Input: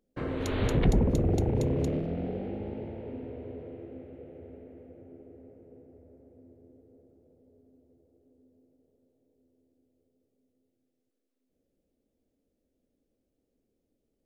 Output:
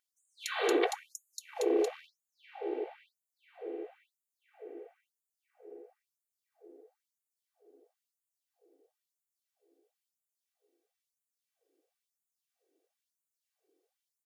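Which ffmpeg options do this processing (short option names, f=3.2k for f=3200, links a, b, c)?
-af "aecho=1:1:2.6:0.66,afftfilt=real='re*gte(b*sr/1024,270*pow(6700/270,0.5+0.5*sin(2*PI*1*pts/sr)))':imag='im*gte(b*sr/1024,270*pow(6700/270,0.5+0.5*sin(2*PI*1*pts/sr)))':win_size=1024:overlap=0.75,volume=2.5dB"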